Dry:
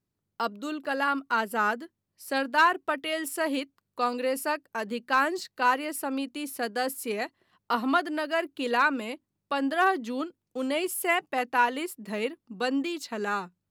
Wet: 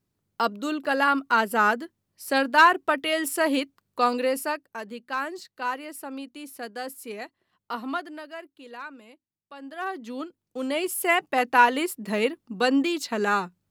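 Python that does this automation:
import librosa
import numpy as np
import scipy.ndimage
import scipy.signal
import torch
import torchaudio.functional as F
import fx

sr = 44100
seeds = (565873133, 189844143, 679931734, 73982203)

y = fx.gain(x, sr, db=fx.line((4.15, 5.0), (4.93, -5.5), (7.94, -5.5), (8.63, -15.5), (9.54, -15.5), (10.1, -3.0), (11.53, 6.0)))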